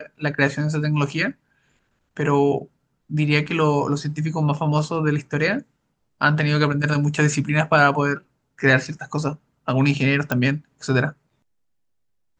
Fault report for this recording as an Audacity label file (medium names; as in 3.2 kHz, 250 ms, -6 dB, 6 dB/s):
10.320000	10.320000	pop -8 dBFS